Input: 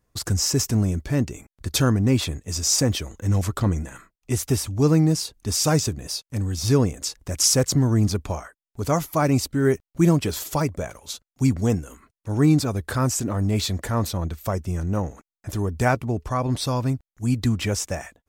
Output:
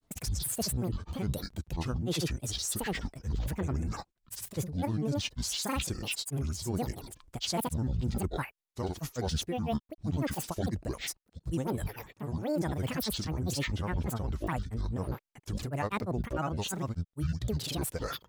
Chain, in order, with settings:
reversed playback
downward compressor 4 to 1, threshold −34 dBFS, peak gain reduction 18 dB
reversed playback
granular cloud, grains 20 per second, pitch spread up and down by 12 semitones
level +3 dB

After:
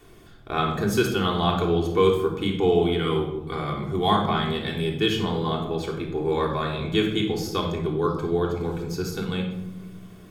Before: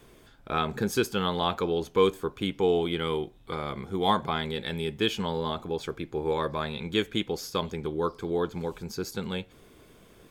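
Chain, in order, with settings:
on a send: feedback echo with a low-pass in the loop 92 ms, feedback 80%, low-pass 830 Hz, level −10.5 dB
on the sum: rectangular room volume 2,100 cubic metres, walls furnished, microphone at 3.4 metres

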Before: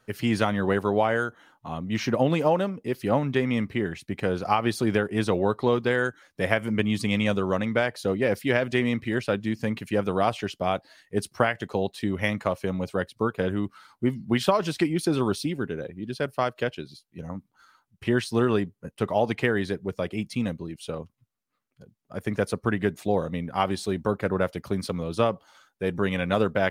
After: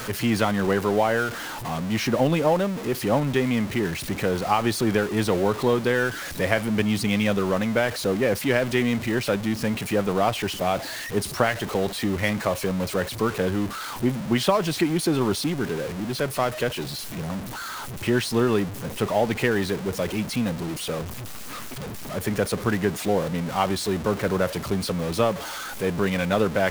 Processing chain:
converter with a step at zero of −28 dBFS

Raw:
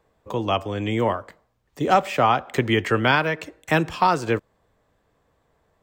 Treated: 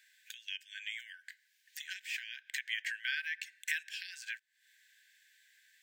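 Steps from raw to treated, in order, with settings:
downward compressor 3 to 1, threshold −34 dBFS, peak gain reduction 16 dB
linear-phase brick-wall high-pass 1,500 Hz
one half of a high-frequency compander encoder only
level +2 dB

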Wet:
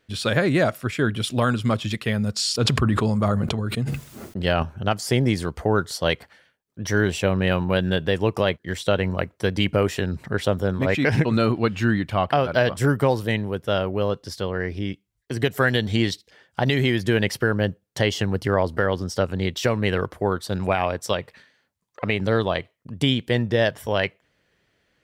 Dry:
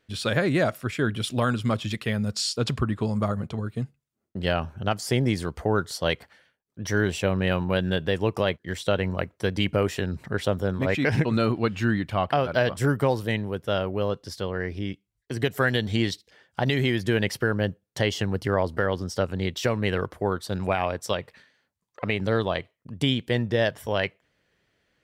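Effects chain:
0:02.43–0:04.63: level that may fall only so fast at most 21 dB per second
level +3 dB

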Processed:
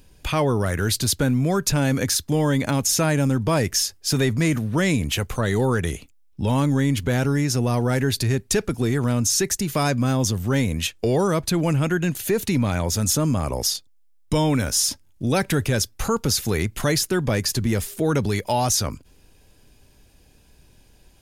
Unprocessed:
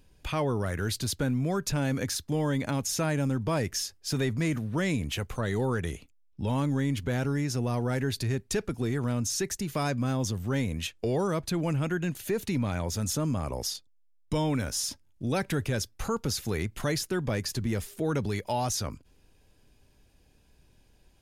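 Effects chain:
high-shelf EQ 5,700 Hz +5 dB
level +7.5 dB

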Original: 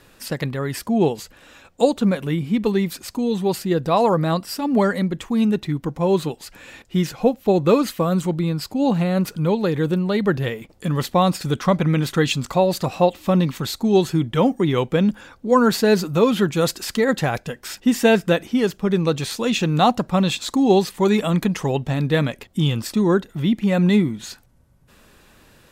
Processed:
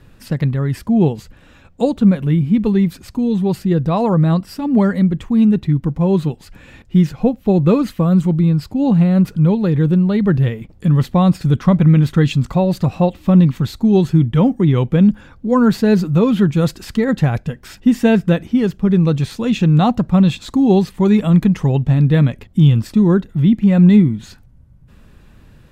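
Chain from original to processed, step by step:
bass and treble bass +14 dB, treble −6 dB
level −2 dB

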